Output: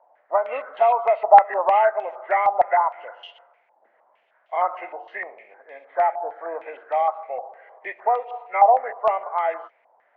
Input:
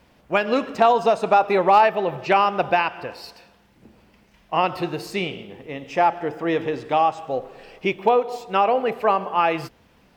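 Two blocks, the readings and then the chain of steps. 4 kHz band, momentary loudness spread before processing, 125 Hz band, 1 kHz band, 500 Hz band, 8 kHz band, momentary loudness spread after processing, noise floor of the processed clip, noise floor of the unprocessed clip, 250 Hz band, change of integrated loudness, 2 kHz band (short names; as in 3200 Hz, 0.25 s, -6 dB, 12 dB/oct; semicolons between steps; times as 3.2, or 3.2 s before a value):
under -10 dB, 13 LU, under -30 dB, +1.0 dB, -1.5 dB, n/a, 18 LU, -64 dBFS, -57 dBFS, -23.5 dB, 0.0 dB, -4.0 dB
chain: nonlinear frequency compression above 1200 Hz 1.5:1; ladder high-pass 570 Hz, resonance 60%; stepped low-pass 6.5 Hz 860–3200 Hz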